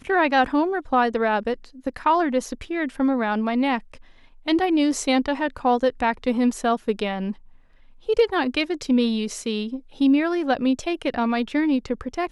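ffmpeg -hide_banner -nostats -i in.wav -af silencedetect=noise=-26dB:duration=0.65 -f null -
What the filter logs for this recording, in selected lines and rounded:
silence_start: 7.31
silence_end: 8.09 | silence_duration: 0.77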